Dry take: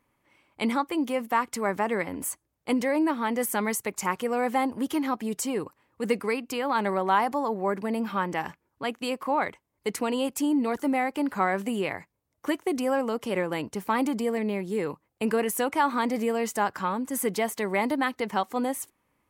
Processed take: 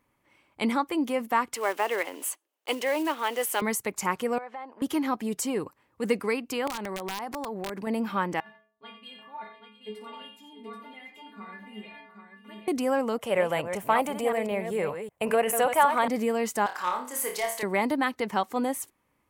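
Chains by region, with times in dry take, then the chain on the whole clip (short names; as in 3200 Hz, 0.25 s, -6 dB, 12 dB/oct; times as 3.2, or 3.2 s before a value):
1.54–3.62 block floating point 5-bit + HPF 360 Hz 24 dB/oct + bell 2900 Hz +9.5 dB 0.35 oct
4.38–4.82 HPF 680 Hz + tape spacing loss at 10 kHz 30 dB + compressor 3:1, threshold -37 dBFS
6.67–7.87 compressor 8:1, threshold -30 dBFS + wrapped overs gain 26 dB
8.4–12.68 resonant high shelf 4600 Hz -10 dB, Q 3 + metallic resonator 210 Hz, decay 0.53 s, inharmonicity 0.008 + tapped delay 55/87/687/782 ms -10/-9/-15/-6 dB
13.18–16.08 reverse delay 0.191 s, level -8 dB + EQ curve 150 Hz 0 dB, 290 Hz -10 dB, 650 Hz +9 dB, 920 Hz +2 dB, 3100 Hz +2 dB, 4600 Hz -7 dB, 8000 Hz +2 dB
16.66–17.63 HPF 640 Hz + overloaded stage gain 23.5 dB + flutter echo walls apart 4.8 m, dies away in 0.37 s
whole clip: dry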